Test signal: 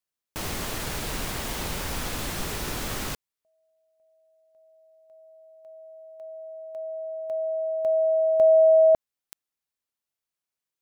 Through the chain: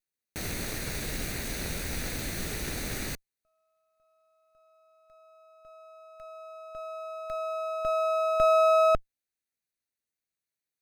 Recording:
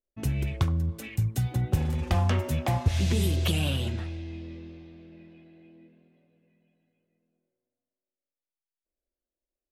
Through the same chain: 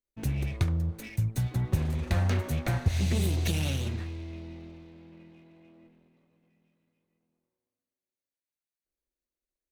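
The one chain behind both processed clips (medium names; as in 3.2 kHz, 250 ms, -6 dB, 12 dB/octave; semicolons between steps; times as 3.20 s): comb filter that takes the minimum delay 0.48 ms; trim -1.5 dB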